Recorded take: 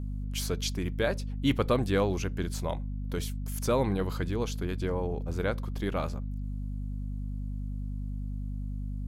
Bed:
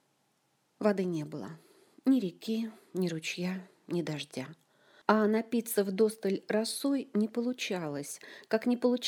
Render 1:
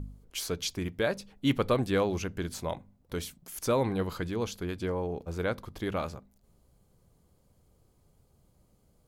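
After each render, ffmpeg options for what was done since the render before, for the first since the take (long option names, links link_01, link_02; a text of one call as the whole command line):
ffmpeg -i in.wav -af "bandreject=frequency=50:width_type=h:width=4,bandreject=frequency=100:width_type=h:width=4,bandreject=frequency=150:width_type=h:width=4,bandreject=frequency=200:width_type=h:width=4,bandreject=frequency=250:width_type=h:width=4" out.wav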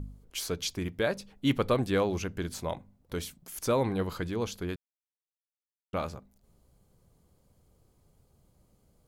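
ffmpeg -i in.wav -filter_complex "[0:a]asplit=3[link_01][link_02][link_03];[link_01]atrim=end=4.76,asetpts=PTS-STARTPTS,afade=type=out:start_time=4.756:duration=0.004:curve=hsin[link_04];[link_02]atrim=start=4.76:end=5.93,asetpts=PTS-STARTPTS,volume=0[link_05];[link_03]atrim=start=5.93,asetpts=PTS-STARTPTS,afade=type=in:duration=0.004:curve=hsin[link_06];[link_04][link_05][link_06]concat=n=3:v=0:a=1" out.wav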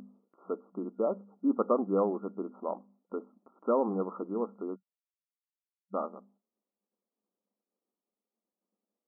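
ffmpeg -i in.wav -af "afftfilt=real='re*between(b*sr/4096,190,1400)':imag='im*between(b*sr/4096,190,1400)':win_size=4096:overlap=0.75,agate=range=-33dB:threshold=-59dB:ratio=3:detection=peak" out.wav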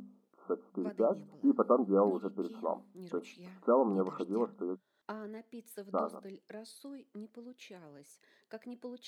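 ffmpeg -i in.wav -i bed.wav -filter_complex "[1:a]volume=-17.5dB[link_01];[0:a][link_01]amix=inputs=2:normalize=0" out.wav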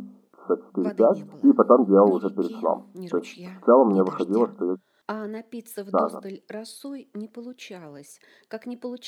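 ffmpeg -i in.wav -af "volume=11.5dB" out.wav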